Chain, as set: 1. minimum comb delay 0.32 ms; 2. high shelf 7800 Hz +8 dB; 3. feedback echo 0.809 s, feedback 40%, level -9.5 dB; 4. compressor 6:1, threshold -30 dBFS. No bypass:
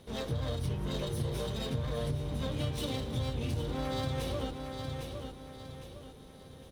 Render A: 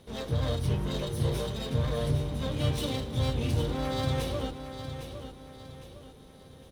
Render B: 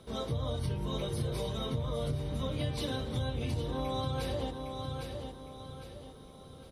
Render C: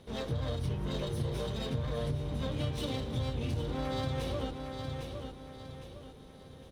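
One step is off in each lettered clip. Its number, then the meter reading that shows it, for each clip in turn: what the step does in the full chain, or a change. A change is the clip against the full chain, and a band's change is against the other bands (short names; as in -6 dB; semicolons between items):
4, mean gain reduction 2.5 dB; 1, 1 kHz band +2.0 dB; 2, 8 kHz band -4.0 dB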